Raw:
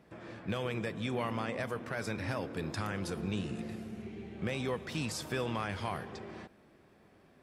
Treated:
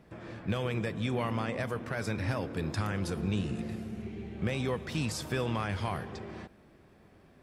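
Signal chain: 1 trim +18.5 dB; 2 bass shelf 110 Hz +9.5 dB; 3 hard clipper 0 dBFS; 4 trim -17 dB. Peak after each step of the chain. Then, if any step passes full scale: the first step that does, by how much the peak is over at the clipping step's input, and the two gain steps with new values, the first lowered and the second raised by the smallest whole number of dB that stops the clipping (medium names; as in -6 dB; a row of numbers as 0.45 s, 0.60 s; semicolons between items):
-3.0 dBFS, -2.0 dBFS, -2.0 dBFS, -19.0 dBFS; nothing clips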